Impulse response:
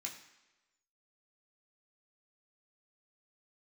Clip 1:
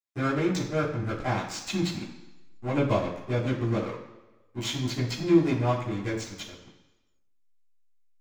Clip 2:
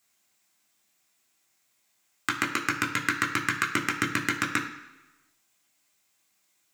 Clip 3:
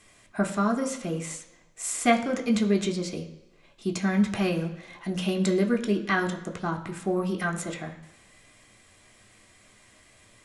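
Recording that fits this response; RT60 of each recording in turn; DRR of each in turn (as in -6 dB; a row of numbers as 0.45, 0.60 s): 2; 1.1, 1.1, 1.1 s; -11.0, -1.0, 3.5 dB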